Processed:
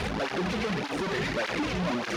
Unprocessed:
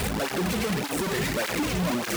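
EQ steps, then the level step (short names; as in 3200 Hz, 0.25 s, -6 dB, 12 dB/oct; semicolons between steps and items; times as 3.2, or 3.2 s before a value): air absorption 100 m; low shelf 320 Hz -4.5 dB; bell 8000 Hz -7 dB 0.33 oct; 0.0 dB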